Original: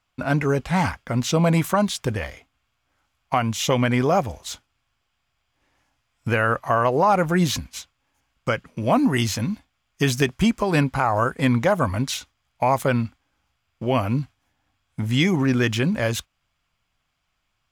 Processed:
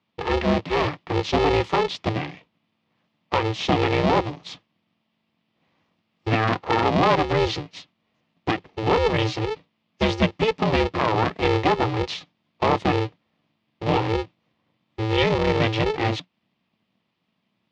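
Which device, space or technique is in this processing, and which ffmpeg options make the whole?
ring modulator pedal into a guitar cabinet: -af "aeval=exprs='val(0)*sgn(sin(2*PI*220*n/s))':channel_layout=same,highpass=91,equalizer=frequency=110:width_type=q:width=4:gain=5,equalizer=frequency=180:width_type=q:width=4:gain=7,equalizer=frequency=1500:width_type=q:width=4:gain=-9,lowpass=frequency=4400:width=0.5412,lowpass=frequency=4400:width=1.3066"

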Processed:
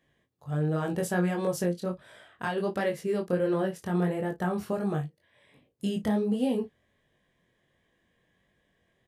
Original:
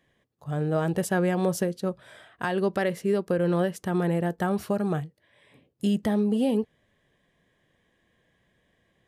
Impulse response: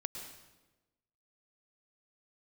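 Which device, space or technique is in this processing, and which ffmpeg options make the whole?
double-tracked vocal: -filter_complex "[0:a]asplit=2[link_01][link_02];[link_02]adelay=34,volume=-13.5dB[link_03];[link_01][link_03]amix=inputs=2:normalize=0,flanger=delay=19.5:depth=4:speed=1.4,asplit=3[link_04][link_05][link_06];[link_04]afade=type=out:start_time=3.52:duration=0.02[link_07];[link_05]adynamicequalizer=threshold=0.00631:dfrequency=2200:dqfactor=0.7:tfrequency=2200:tqfactor=0.7:attack=5:release=100:ratio=0.375:range=2:mode=cutabove:tftype=highshelf,afade=type=in:start_time=3.52:duration=0.02,afade=type=out:start_time=4.76:duration=0.02[link_08];[link_06]afade=type=in:start_time=4.76:duration=0.02[link_09];[link_07][link_08][link_09]amix=inputs=3:normalize=0"

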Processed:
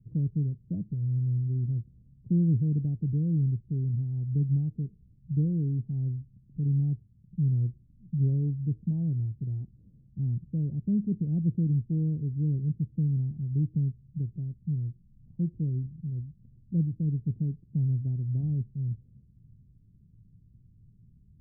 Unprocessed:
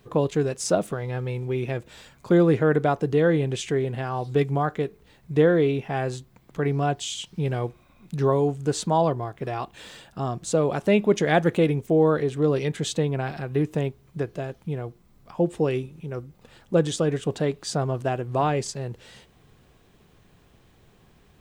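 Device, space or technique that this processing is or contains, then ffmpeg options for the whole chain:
the neighbour's flat through the wall: -filter_complex "[0:a]asettb=1/sr,asplit=3[link_01][link_02][link_03];[link_01]atrim=end=7.514[link_04];[link_02]atrim=start=7.51:end=8.57,asetpts=PTS-STARTPTS,afade=type=in:duration=0.004:curve=qsin,afade=type=out:start_time=1.056:duration=0.004:curve=qsin,equalizer=frequency=510:width_type=o:width=1.4:gain=3[link_05];[link_03]atrim=start=8.566[link_06];[link_04][link_05]acrossfade=duration=0.004:curve1=hsin:curve2=qsin[link_07];[link_07][link_06]acrossfade=duration=0.004:curve1=qsin:curve2=hsin,lowpass=frequency=200:width=0.5412,lowpass=frequency=200:width=1.3066,equalizer=frequency=110:width_type=o:width=0.47:gain=6"

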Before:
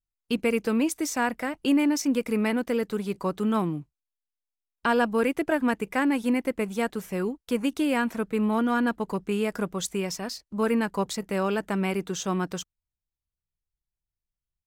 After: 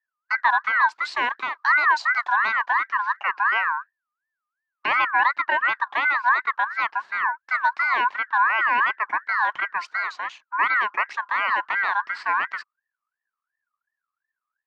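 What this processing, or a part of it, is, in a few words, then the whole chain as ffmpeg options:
voice changer toy: -filter_complex "[0:a]asettb=1/sr,asplit=3[link_01][link_02][link_03];[link_01]atrim=end=1.034[link_04];[link_02]atrim=start=1.03:end=2.67,asetpts=PTS-STARTPTS,afade=type=in:duration=0.004:curve=qsin,afade=type=out:start_time=1.636:duration=0.004:curve=qsin,equalizer=frequency=6500:width=1.2:gain=8[link_05];[link_03]atrim=start=2.666[link_06];[link_04][link_05]acrossfade=duration=0.004:curve1=hsin:curve2=qsin[link_07];[link_07][link_06]acrossfade=duration=0.004:curve1=qsin:curve2=hsin,aeval=exprs='val(0)*sin(2*PI*1500*n/s+1500*0.2/2.8*sin(2*PI*2.8*n/s))':channel_layout=same,highpass=450,equalizer=frequency=490:width_type=q:width=4:gain=-8,equalizer=frequency=1000:width_type=q:width=4:gain=10,equalizer=frequency=1700:width_type=q:width=4:gain=5,equalizer=frequency=3400:width_type=q:width=4:gain=-8,lowpass=frequency=4100:width=0.5412,lowpass=frequency=4100:width=1.3066,volume=2.5dB"

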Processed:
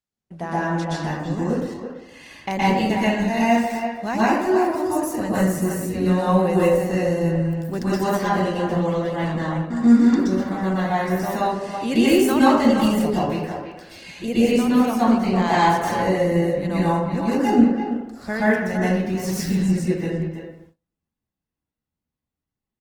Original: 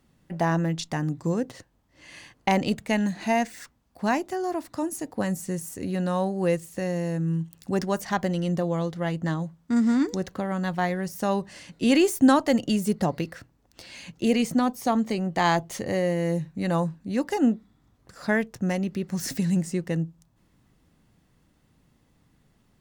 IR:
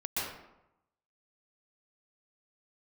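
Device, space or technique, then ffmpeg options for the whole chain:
speakerphone in a meeting room: -filter_complex "[1:a]atrim=start_sample=2205[link_01];[0:a][link_01]afir=irnorm=-1:irlink=0,asplit=2[link_02][link_03];[link_03]adelay=330,highpass=300,lowpass=3400,asoftclip=type=hard:threshold=-9.5dB,volume=-8dB[link_04];[link_02][link_04]amix=inputs=2:normalize=0,dynaudnorm=framelen=650:gausssize=11:maxgain=7dB,agate=range=-28dB:threshold=-44dB:ratio=16:detection=peak,volume=-2dB" -ar 48000 -c:a libopus -b:a 20k

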